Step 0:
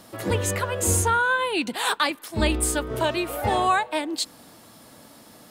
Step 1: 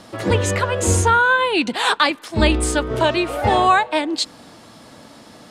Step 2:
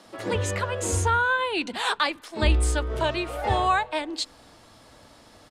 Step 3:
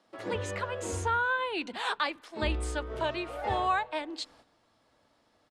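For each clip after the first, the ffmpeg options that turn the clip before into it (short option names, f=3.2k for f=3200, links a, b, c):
-af "lowpass=6.6k,volume=6.5dB"
-filter_complex "[0:a]asubboost=boost=5.5:cutoff=72,acrossover=split=200[a][b];[a]adelay=50[c];[c][b]amix=inputs=2:normalize=0,volume=-7.5dB"
-af "agate=range=-10dB:threshold=-48dB:ratio=16:detection=peak,lowpass=f=3.9k:p=1,lowshelf=f=140:g=-8,volume=-5dB"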